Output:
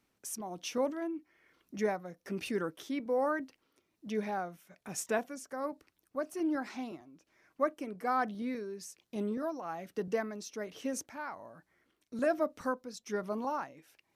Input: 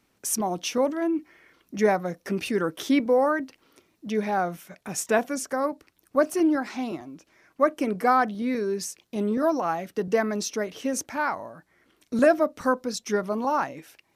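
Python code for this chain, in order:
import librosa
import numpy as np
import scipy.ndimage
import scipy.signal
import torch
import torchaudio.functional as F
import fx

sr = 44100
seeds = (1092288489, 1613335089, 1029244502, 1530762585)

y = x * (1.0 - 0.55 / 2.0 + 0.55 / 2.0 * np.cos(2.0 * np.pi * 1.2 * (np.arange(len(x)) / sr)))
y = y * librosa.db_to_amplitude(-8.0)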